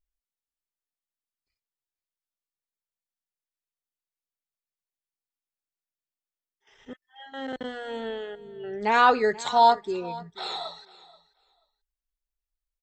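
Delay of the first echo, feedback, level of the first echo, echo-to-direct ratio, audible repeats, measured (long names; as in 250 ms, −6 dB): 483 ms, 17%, −19.5 dB, −19.5 dB, 2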